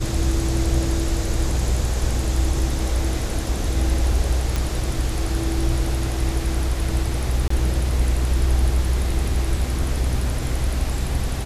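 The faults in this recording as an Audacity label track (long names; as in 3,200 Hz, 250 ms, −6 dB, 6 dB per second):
4.560000	4.560000	click
7.480000	7.500000	drop-out 24 ms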